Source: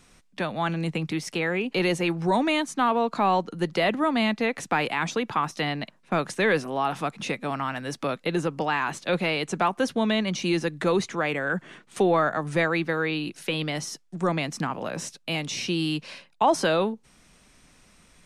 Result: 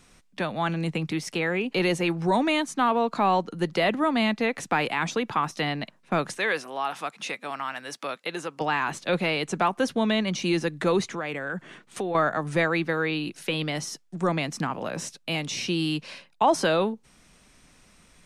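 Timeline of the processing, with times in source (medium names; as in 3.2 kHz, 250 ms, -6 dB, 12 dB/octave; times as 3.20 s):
6.38–8.61 s: high-pass 870 Hz 6 dB/octave
11.13–12.15 s: compression 2.5:1, threshold -29 dBFS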